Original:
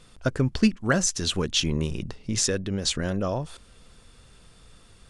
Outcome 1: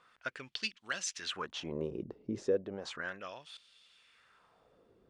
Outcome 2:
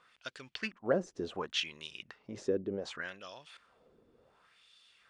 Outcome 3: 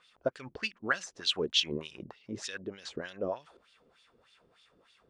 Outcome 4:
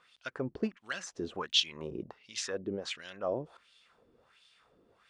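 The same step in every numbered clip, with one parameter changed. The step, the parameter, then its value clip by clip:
wah-wah, rate: 0.34 Hz, 0.68 Hz, 3.3 Hz, 1.4 Hz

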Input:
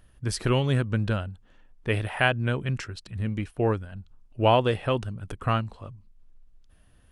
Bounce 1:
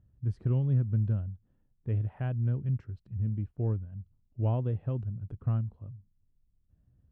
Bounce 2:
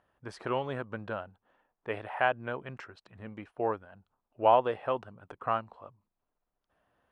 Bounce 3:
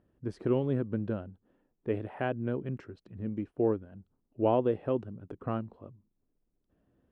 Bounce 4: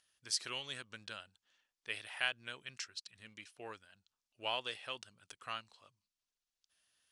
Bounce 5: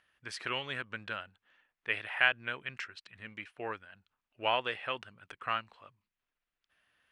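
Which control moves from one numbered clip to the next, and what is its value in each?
band-pass filter, frequency: 110 Hz, 840 Hz, 330 Hz, 5.5 kHz, 2.1 kHz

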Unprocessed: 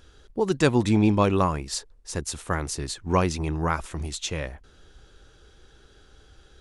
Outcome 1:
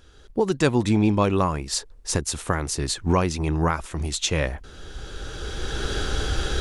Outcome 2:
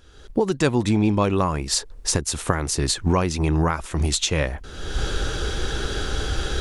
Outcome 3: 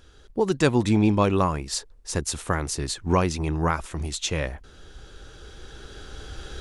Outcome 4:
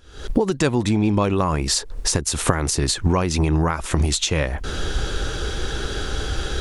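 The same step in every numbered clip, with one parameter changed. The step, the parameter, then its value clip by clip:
recorder AGC, rising by: 14 dB/s, 36 dB/s, 5.7 dB/s, 89 dB/s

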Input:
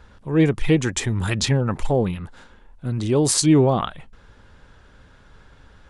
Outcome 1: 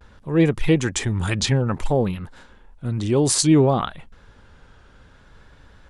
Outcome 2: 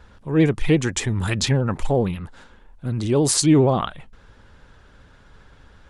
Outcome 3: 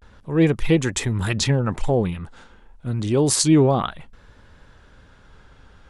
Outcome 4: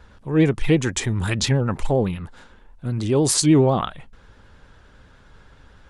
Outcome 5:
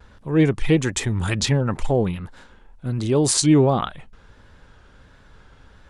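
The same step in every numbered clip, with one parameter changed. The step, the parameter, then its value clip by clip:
vibrato, rate: 0.58 Hz, 15 Hz, 0.3 Hz, 9.7 Hz, 1.4 Hz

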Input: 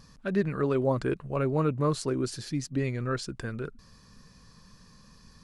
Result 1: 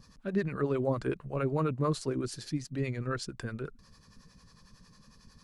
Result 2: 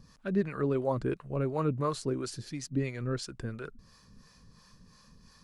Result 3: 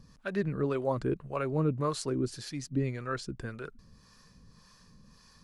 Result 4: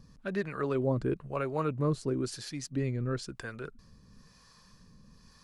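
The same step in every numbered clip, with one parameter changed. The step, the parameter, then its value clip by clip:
harmonic tremolo, rate: 11 Hz, 2.9 Hz, 1.8 Hz, 1 Hz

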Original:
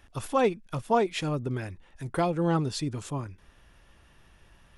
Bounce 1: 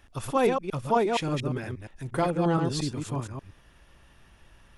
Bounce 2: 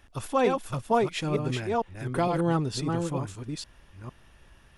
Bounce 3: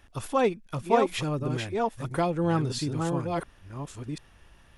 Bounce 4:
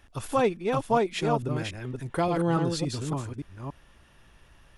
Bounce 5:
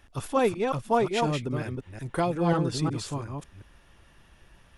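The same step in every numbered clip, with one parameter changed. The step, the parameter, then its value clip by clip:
chunks repeated in reverse, time: 117 ms, 455 ms, 697 ms, 285 ms, 181 ms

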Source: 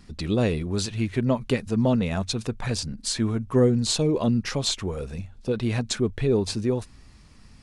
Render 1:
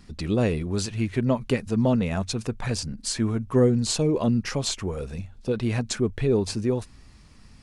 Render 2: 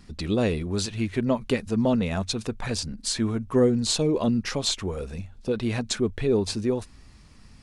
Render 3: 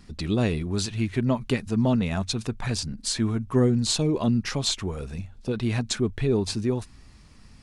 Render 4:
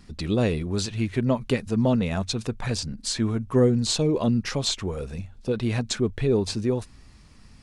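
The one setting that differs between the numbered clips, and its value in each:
dynamic bell, frequency: 3.7 kHz, 130 Hz, 510 Hz, 10 kHz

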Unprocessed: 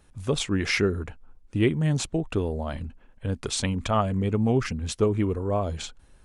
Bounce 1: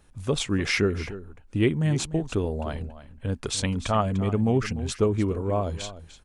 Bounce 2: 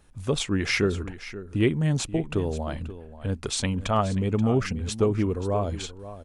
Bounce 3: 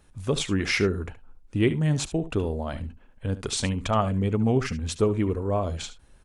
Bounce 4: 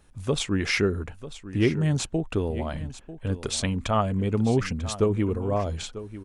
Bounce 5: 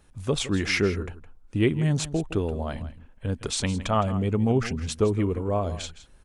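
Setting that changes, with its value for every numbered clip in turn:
delay, time: 297 ms, 531 ms, 72 ms, 944 ms, 163 ms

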